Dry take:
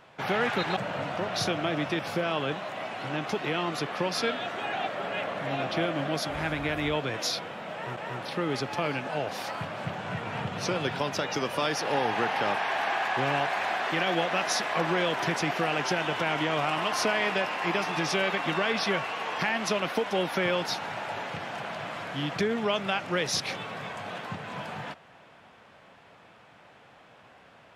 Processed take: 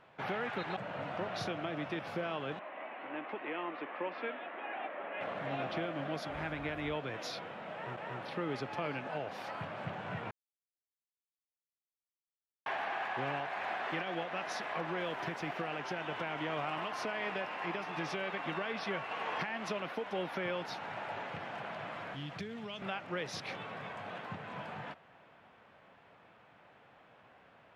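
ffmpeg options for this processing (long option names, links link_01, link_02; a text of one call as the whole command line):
ffmpeg -i in.wav -filter_complex "[0:a]asettb=1/sr,asplit=3[link_01][link_02][link_03];[link_01]atrim=end=2.594[link_04];[link_02]atrim=start=2.59:end=5.21,asetpts=PTS-STARTPTS,afade=type=in:duration=0.004:curve=qsin,afade=type=out:start_time=2.616:duration=0.004:curve=qsin,highpass=frequency=270:width=0.5412,highpass=frequency=270:width=1.3066,equalizer=frequency=420:width_type=q:width=4:gain=-6,equalizer=frequency=720:width_type=q:width=4:gain=-4,equalizer=frequency=1400:width_type=q:width=4:gain=-5,lowpass=frequency=2600:width=0.5412,lowpass=frequency=2600:width=1.3066[link_05];[link_03]atrim=start=5.206[link_06];[link_04][link_05]acrossfade=duration=0.004:curve1=hsin:curve2=qsin[link_07];[link_07][link_06]acrossfade=duration=0.004:curve1=qsin:curve2=hsin,asettb=1/sr,asplit=3[link_08][link_09][link_10];[link_08]atrim=end=14.994[link_11];[link_09]atrim=start=14.99:end=15.58,asetpts=PTS-STARTPTS,afade=type=in:duration=0.004:curve=qsin,afade=type=out:start_time=0.586:duration=0.004:curve=qsin,aeval=exprs='sgn(val(0))*max(abs(val(0))-0.00422,0)':channel_layout=same[link_12];[link_10]atrim=start=15.576[link_13];[link_11][link_12]acrossfade=duration=0.004:curve1=hsin:curve2=qsin[link_14];[link_14][link_13]acrossfade=duration=0.004:curve1=qsin:curve2=hsin,asettb=1/sr,asplit=3[link_15][link_16][link_17];[link_15]atrim=end=22.144[link_18];[link_16]atrim=start=22.14:end=22.82,asetpts=PTS-STARTPTS,afade=type=in:duration=0.004:curve=qsin,afade=type=out:start_time=0.676:duration=0.004:curve=qsin,acrossover=split=170|3000[link_19][link_20][link_21];[link_20]acompressor=threshold=-38dB:ratio=6:attack=3.2:release=140:knee=2.83:detection=peak[link_22];[link_19][link_22][link_21]amix=inputs=3:normalize=0[link_23];[link_17]atrim=start=22.816[link_24];[link_18][link_23]acrossfade=duration=0.004:curve1=hsin:curve2=qsin[link_25];[link_25][link_24]acrossfade=duration=0.004:curve1=qsin:curve2=hsin,asplit=5[link_26][link_27][link_28][link_29][link_30];[link_26]atrim=end=10.31,asetpts=PTS-STARTPTS,afade=type=out:start_time=10.306:duration=0.004:curve=hsin[link_31];[link_27]atrim=start=10.31:end=12.66,asetpts=PTS-STARTPTS,volume=0[link_32];[link_28]atrim=start=12.66:end=19.112,asetpts=PTS-STARTPTS,afade=type=in:duration=0.004:curve=hsin[link_33];[link_29]atrim=start=19.108:end=19.952,asetpts=PTS-STARTPTS,volume=4dB[link_34];[link_30]atrim=start=19.948[link_35];[link_31][link_32][link_33]concat=n=3:v=0:a=1[link_36];[link_36][link_34]acrossfade=duration=0.004:curve1=hsin:curve2=hsin[link_37];[link_37][link_35]acrossfade=duration=0.004:curve1=hsin:curve2=hsin,bass=frequency=250:gain=-1,treble=frequency=4000:gain=-11,alimiter=limit=-20.5dB:level=0:latency=1:release=464,volume=-6dB" out.wav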